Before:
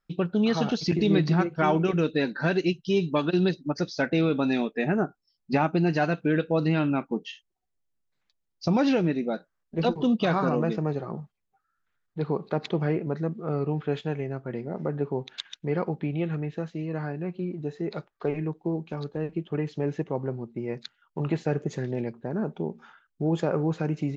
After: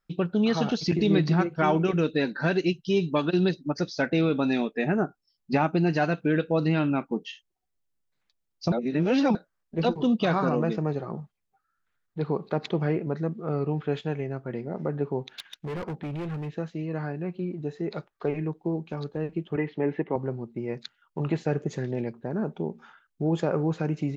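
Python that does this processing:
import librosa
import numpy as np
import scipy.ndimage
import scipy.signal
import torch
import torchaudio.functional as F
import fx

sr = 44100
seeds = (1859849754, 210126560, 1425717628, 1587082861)

y = fx.clip_hard(x, sr, threshold_db=-30.0, at=(15.3, 16.52))
y = fx.cabinet(y, sr, low_hz=160.0, low_slope=12, high_hz=3300.0, hz=(260.0, 380.0, 880.0, 2000.0), db=(4, 4, 5, 9), at=(19.56, 20.16))
y = fx.edit(y, sr, fx.reverse_span(start_s=8.72, length_s=0.63), tone=tone)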